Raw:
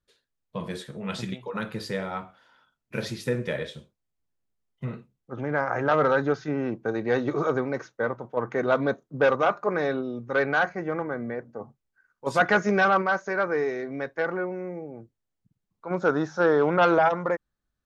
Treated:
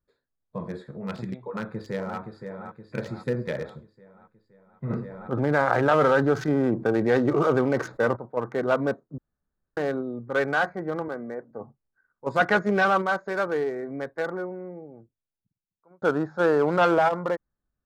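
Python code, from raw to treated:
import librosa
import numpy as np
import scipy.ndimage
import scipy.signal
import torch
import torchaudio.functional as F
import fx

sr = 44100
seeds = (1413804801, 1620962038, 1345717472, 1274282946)

y = fx.echo_throw(x, sr, start_s=1.43, length_s=0.76, ms=520, feedback_pct=55, wet_db=-6.5)
y = fx.env_flatten(y, sr, amount_pct=50, at=(4.89, 8.15), fade=0.02)
y = fx.bessel_highpass(y, sr, hz=250.0, order=2, at=(11.08, 11.51))
y = fx.edit(y, sr, fx.room_tone_fill(start_s=9.18, length_s=0.59),
    fx.fade_out_span(start_s=14.03, length_s=1.99), tone=tone)
y = fx.wiener(y, sr, points=15)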